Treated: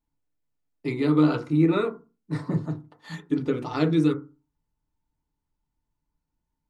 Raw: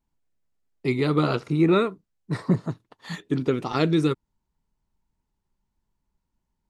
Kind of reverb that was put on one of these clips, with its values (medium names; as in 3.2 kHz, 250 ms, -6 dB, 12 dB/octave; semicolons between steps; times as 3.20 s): FDN reverb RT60 0.3 s, low-frequency decay 1.3×, high-frequency decay 0.3×, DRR 3 dB; trim -5.5 dB